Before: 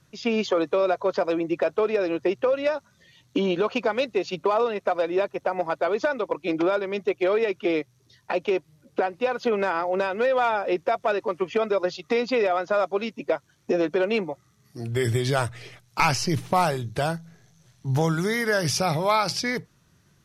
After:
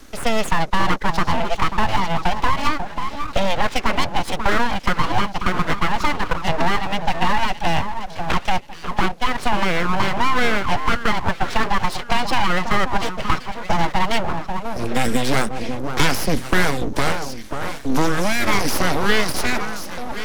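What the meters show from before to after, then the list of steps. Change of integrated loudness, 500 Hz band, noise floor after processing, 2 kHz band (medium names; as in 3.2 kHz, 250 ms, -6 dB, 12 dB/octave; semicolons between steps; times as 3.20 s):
+3.0 dB, -3.0 dB, -34 dBFS, +8.0 dB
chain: echo whose repeats swap between lows and highs 539 ms, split 810 Hz, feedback 54%, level -9 dB; full-wave rectifier; three bands compressed up and down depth 40%; trim +7.5 dB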